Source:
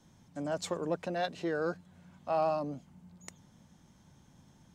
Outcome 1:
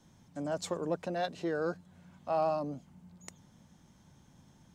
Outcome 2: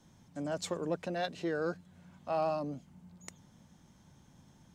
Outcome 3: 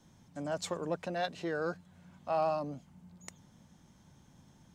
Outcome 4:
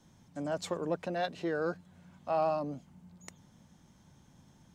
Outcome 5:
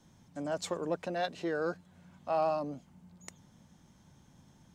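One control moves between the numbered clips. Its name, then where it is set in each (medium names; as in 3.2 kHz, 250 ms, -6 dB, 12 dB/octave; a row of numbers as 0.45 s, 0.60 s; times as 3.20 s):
dynamic bell, frequency: 2.3 kHz, 890 Hz, 340 Hz, 7.2 kHz, 130 Hz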